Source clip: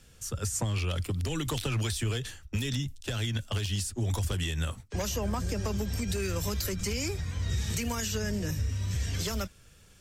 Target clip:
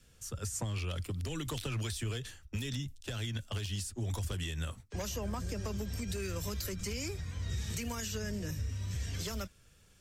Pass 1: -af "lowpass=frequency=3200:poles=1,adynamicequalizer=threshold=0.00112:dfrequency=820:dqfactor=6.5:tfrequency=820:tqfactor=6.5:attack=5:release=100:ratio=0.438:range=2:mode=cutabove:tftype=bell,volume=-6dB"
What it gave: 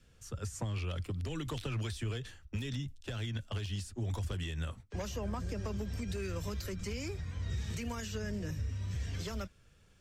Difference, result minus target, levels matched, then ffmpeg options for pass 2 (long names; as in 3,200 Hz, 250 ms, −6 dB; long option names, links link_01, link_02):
4,000 Hz band −2.5 dB
-af "adynamicequalizer=threshold=0.00112:dfrequency=820:dqfactor=6.5:tfrequency=820:tqfactor=6.5:attack=5:release=100:ratio=0.438:range=2:mode=cutabove:tftype=bell,volume=-6dB"